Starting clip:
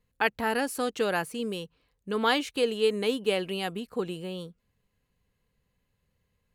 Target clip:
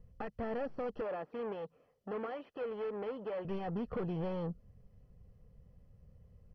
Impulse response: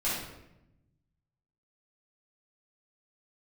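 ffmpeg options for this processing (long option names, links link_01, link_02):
-filter_complex "[0:a]highshelf=frequency=2900:gain=8,aecho=1:1:1.6:0.6,acompressor=threshold=-35dB:ratio=16,aeval=exprs='(tanh(200*val(0)+0.25)-tanh(0.25))/200':channel_layout=same,adynamicsmooth=sensitivity=5.5:basefreq=530,asettb=1/sr,asplit=3[link_01][link_02][link_03];[link_01]atrim=end=1.014[link_04];[link_02]atrim=start=1.01:end=3.45,asetpts=PTS-STARTPTS,afade=type=in:duration=0.004:curve=qsin,afade=type=out:start_time=2.436:duration=0.004:curve=qsin,highpass=330,lowpass=3800[link_05];[link_03]atrim=start=3.446[link_06];[link_04][link_05]acrossfade=duration=0.004:curve1=hsin:curve2=qsin[link_07];[link_07][link_06]acrossfade=duration=0.004:curve1=qsin:curve2=hsin,volume=14.5dB" -ar 32000 -c:a mp2 -b:a 32k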